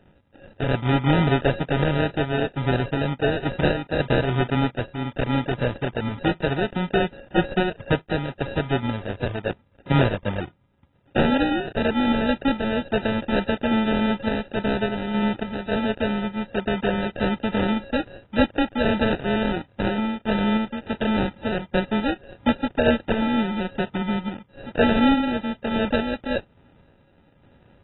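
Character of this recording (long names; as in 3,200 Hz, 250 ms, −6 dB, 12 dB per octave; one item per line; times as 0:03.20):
a buzz of ramps at a fixed pitch in blocks of 16 samples
sample-and-hold tremolo
aliases and images of a low sample rate 1,100 Hz, jitter 0%
AAC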